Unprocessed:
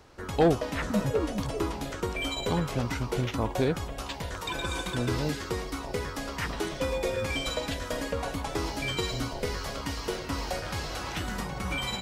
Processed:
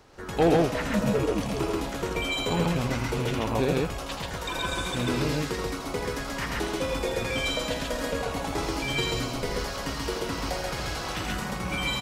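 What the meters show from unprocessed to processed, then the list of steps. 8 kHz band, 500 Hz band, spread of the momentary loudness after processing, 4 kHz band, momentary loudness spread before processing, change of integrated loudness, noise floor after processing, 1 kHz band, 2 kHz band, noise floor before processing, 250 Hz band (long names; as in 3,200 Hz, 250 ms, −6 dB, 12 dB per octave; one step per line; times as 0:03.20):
+3.0 dB, +2.5 dB, 6 LU, +3.0 dB, 6 LU, +2.5 dB, −35 dBFS, +3.0 dB, +3.5 dB, −39 dBFS, +3.0 dB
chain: loose part that buzzes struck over −30 dBFS, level −32 dBFS
parametric band 77 Hz −5.5 dB 0.64 octaves
loudspeakers that aren't time-aligned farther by 28 metres −7 dB, 46 metres −1 dB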